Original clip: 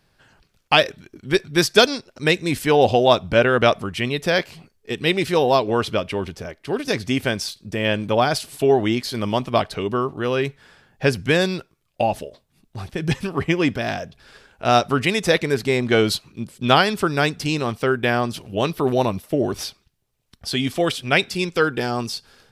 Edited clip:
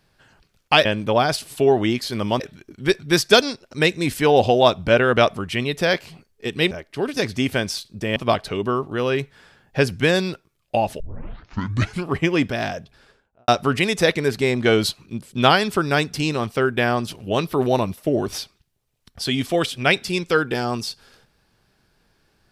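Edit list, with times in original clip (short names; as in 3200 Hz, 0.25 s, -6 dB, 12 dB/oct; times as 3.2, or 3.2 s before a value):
5.16–6.42 cut
7.87–9.42 move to 0.85
12.26 tape start 1.09 s
14.01–14.74 studio fade out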